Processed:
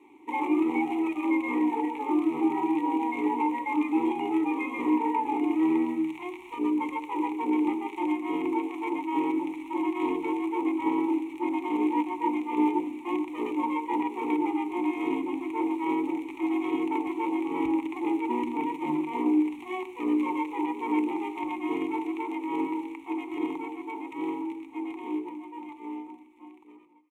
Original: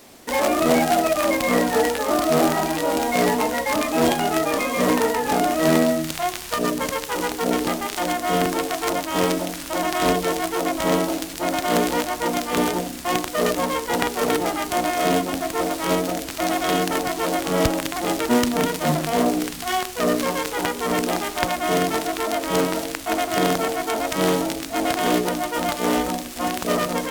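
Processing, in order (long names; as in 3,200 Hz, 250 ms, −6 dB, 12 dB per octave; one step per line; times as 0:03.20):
fade-out on the ending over 6.03 s
parametric band 3,100 Hz −5 dB 1.5 octaves
mains-hum notches 60/120 Hz
brickwall limiter −11 dBFS, peak gain reduction 7.5 dB
formant filter u
phaser with its sweep stopped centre 1,000 Hz, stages 8
comb filter 5.3 ms, depth 32%
feedback echo with a band-pass in the loop 250 ms, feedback 45%, band-pass 1,700 Hz, level −19 dB
level +8.5 dB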